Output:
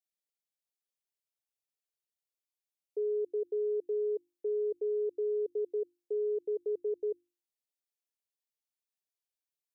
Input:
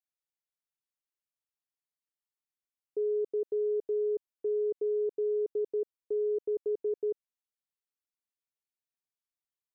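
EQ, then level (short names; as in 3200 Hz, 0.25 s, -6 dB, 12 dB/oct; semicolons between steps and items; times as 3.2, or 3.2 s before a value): HPF 250 Hz 6 dB/oct; notches 50/100/150/200/250/300/350 Hz; fixed phaser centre 510 Hz, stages 4; 0.0 dB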